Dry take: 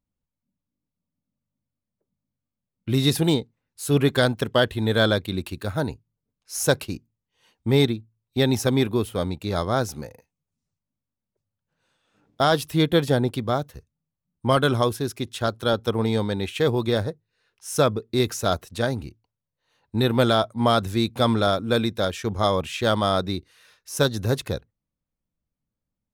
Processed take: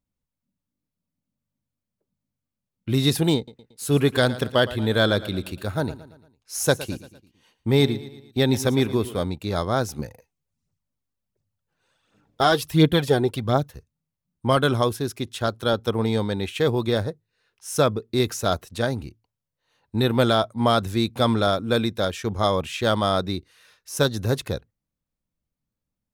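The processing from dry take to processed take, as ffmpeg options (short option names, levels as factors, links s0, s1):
-filter_complex "[0:a]asettb=1/sr,asplit=3[s0][s1][s2];[s0]atrim=end=3.364[s3];[s1]atrim=start=3.36:end=9.23,asetpts=PTS-STARTPTS,afade=t=in:d=0.004:c=qsin,afade=t=out:st=5.866:d=0.004:c=qsin,aecho=1:1:114|228|342|456:0.158|0.0777|0.0381|0.0186,atrim=end_sample=258867[s4];[s2]atrim=start=9.226[s5];[s3][s4]acrossfade=d=0.004:c1=hsin:c2=qsin[s6];[s6][s5]acrossfade=d=0.004:c1=qsin:c2=hsin,asettb=1/sr,asplit=3[s7][s8][s9];[s7]atrim=end=9.994[s10];[s8]atrim=start=9.99:end=13.71,asetpts=PTS-STARTPTS,afade=t=in:d=0.004:c=qsin,afade=t=out:st=3.716:d=0.004:c=qsin,aphaser=in_gain=1:out_gain=1:delay=3:decay=0.5:speed=1.4:type=triangular[s11];[s9]atrim=start=13.706[s12];[s10][s11]acrossfade=d=0.004:c1=hsin:c2=qsin[s13];[s13][s12]acrossfade=d=0.004:c1=qsin:c2=hsin"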